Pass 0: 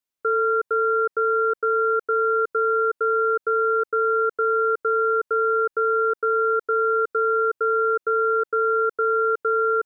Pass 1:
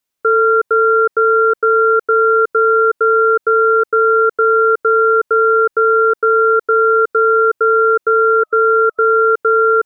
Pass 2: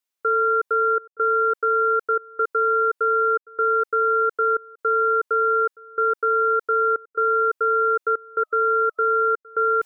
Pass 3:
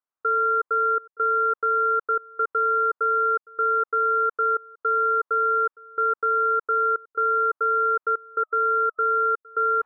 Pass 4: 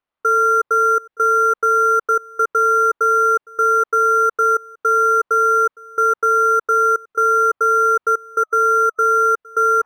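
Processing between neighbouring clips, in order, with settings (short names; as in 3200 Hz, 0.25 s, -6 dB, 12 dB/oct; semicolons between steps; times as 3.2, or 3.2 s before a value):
spectral repair 8.38–9.09, 620–1300 Hz; gain +9 dB
low shelf 320 Hz -11 dB; reverse; upward compressor, threshold -33 dBFS; reverse; step gate "xxxxxxxxx.." 138 bpm -24 dB; gain -6 dB
synth low-pass 1200 Hz, resonance Q 2.5; gain -6 dB
decimation joined by straight lines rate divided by 6×; gain +7.5 dB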